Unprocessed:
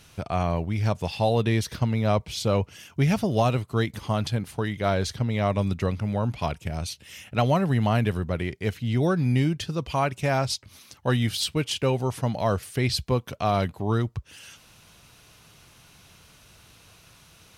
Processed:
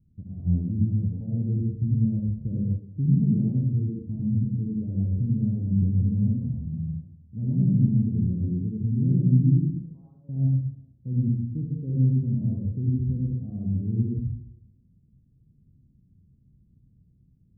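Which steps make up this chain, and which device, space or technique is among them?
9.73–10.29 s: Bessel high-pass 1.1 kHz, order 2; club heard from the street (peak limiter -17 dBFS, peak gain reduction 6 dB; low-pass 240 Hz 24 dB/octave; reverberation RT60 1.0 s, pre-delay 64 ms, DRR -3.5 dB); spectral noise reduction 6 dB

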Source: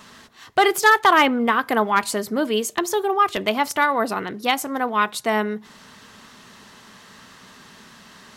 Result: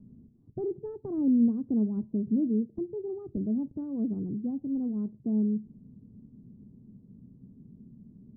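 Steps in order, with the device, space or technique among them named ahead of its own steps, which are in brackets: the neighbour's flat through the wall (low-pass 270 Hz 24 dB/octave; peaking EQ 130 Hz +4.5 dB 0.44 oct); trim +2 dB

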